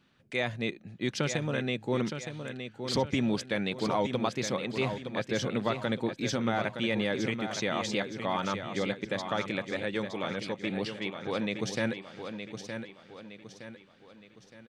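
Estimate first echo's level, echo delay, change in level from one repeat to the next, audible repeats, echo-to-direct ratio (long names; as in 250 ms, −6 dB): −8.0 dB, 916 ms, −7.5 dB, 4, −7.0 dB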